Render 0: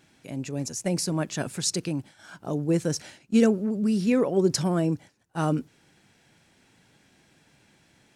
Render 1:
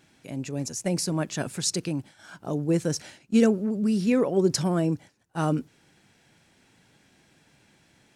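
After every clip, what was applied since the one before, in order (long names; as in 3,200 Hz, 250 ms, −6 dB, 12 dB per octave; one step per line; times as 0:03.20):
no processing that can be heard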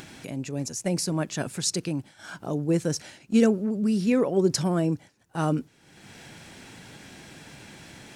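upward compression, threshold −32 dBFS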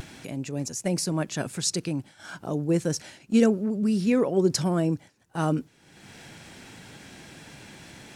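pitch vibrato 0.41 Hz 16 cents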